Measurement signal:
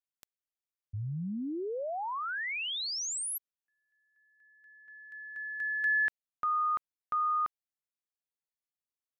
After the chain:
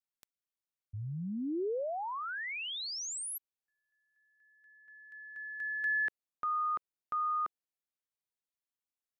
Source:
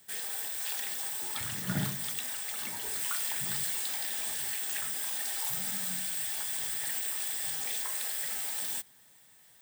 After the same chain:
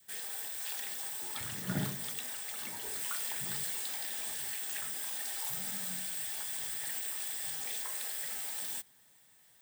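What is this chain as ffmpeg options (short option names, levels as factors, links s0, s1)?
-af "adynamicequalizer=threshold=0.00316:dfrequency=400:dqfactor=0.88:tfrequency=400:tqfactor=0.88:attack=5:release=100:ratio=0.375:range=3:mode=boostabove:tftype=bell,volume=0.631"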